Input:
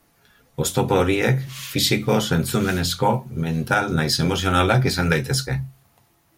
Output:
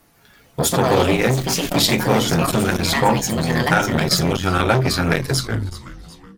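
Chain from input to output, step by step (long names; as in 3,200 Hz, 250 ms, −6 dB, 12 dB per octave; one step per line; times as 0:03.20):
turntable brake at the end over 1.00 s
on a send: echo with shifted repeats 374 ms, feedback 43%, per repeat −150 Hz, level −18 dB
on the sum: delay with pitch and tempo change per echo 150 ms, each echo +5 semitones, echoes 2, each echo −6 dB
saturating transformer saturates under 820 Hz
level +4.5 dB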